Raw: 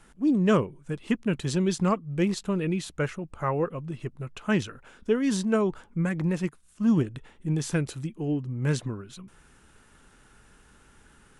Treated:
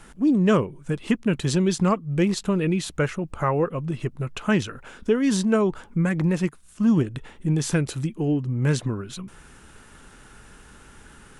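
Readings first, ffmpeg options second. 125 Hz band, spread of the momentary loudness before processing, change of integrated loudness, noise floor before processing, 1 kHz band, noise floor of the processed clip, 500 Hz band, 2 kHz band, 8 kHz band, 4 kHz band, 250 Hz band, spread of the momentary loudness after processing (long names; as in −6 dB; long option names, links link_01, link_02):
+4.5 dB, 13 LU, +4.0 dB, −58 dBFS, +3.5 dB, −50 dBFS, +3.5 dB, +4.0 dB, +5.0 dB, +5.0 dB, +4.0 dB, 10 LU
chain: -af "acompressor=threshold=-34dB:ratio=1.5,volume=8.5dB"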